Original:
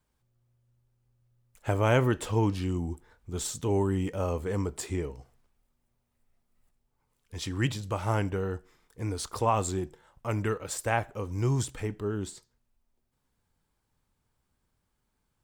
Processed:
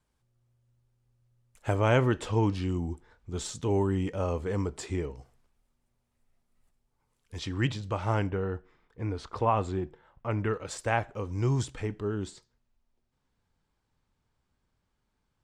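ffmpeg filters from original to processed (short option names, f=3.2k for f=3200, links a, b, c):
-af "asetnsamples=n=441:p=0,asendcmd='1.75 lowpass f 6500;5.17 lowpass f 12000;7.39 lowpass f 5100;8.27 lowpass f 2800;10.54 lowpass f 6200',lowpass=11k"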